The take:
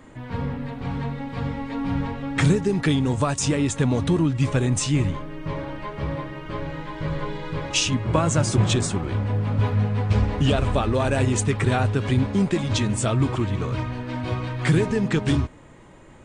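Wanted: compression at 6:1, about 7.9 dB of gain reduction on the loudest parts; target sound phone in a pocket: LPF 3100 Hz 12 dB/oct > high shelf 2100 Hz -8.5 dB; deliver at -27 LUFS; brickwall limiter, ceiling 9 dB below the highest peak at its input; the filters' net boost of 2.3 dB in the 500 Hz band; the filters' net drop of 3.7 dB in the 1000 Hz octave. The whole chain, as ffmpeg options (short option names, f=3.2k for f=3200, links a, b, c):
-af "equalizer=f=500:t=o:g=4.5,equalizer=f=1k:t=o:g=-4.5,acompressor=threshold=-23dB:ratio=6,alimiter=limit=-20dB:level=0:latency=1,lowpass=3.1k,highshelf=f=2.1k:g=-8.5,volume=3.5dB"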